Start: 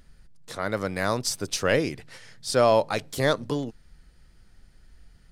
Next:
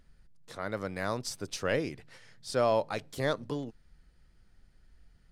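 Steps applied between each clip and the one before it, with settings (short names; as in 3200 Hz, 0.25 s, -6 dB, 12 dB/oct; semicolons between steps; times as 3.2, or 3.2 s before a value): high shelf 4600 Hz -5 dB; gain -7 dB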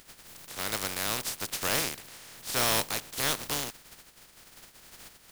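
spectral contrast lowered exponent 0.21; soft clip -24.5 dBFS, distortion -9 dB; gain +4.5 dB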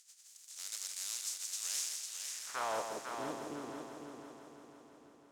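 band-pass sweep 6900 Hz -> 320 Hz, 1.91–3.03; multi-head echo 0.167 s, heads first and third, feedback 61%, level -6.5 dB; gain -1.5 dB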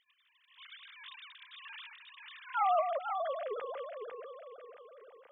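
sine-wave speech; gain +4 dB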